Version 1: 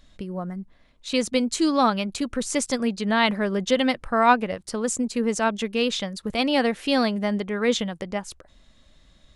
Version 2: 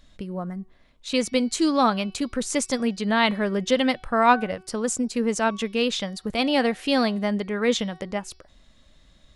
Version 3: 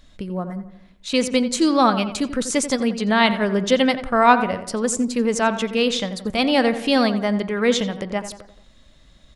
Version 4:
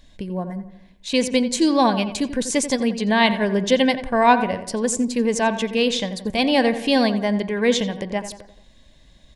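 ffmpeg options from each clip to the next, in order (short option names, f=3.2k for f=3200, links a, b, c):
-af "bandreject=f=374.8:t=h:w=4,bandreject=f=749.6:t=h:w=4,bandreject=f=1.1244k:t=h:w=4,bandreject=f=1.4992k:t=h:w=4,bandreject=f=1.874k:t=h:w=4,bandreject=f=2.2488k:t=h:w=4,bandreject=f=2.6236k:t=h:w=4,bandreject=f=2.9984k:t=h:w=4,bandreject=f=3.3732k:t=h:w=4,bandreject=f=3.748k:t=h:w=4,bandreject=f=4.1228k:t=h:w=4,bandreject=f=4.4976k:t=h:w=4,bandreject=f=4.8724k:t=h:w=4,bandreject=f=5.2472k:t=h:w=4,bandreject=f=5.622k:t=h:w=4"
-filter_complex "[0:a]asplit=2[a][b];[b]adelay=87,lowpass=f=2.3k:p=1,volume=-11dB,asplit=2[c][d];[d]adelay=87,lowpass=f=2.3k:p=1,volume=0.51,asplit=2[e][f];[f]adelay=87,lowpass=f=2.3k:p=1,volume=0.51,asplit=2[g][h];[h]adelay=87,lowpass=f=2.3k:p=1,volume=0.51,asplit=2[i][j];[j]adelay=87,lowpass=f=2.3k:p=1,volume=0.51[k];[a][c][e][g][i][k]amix=inputs=6:normalize=0,volume=3.5dB"
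-af "asuperstop=centerf=1300:order=4:qfactor=4"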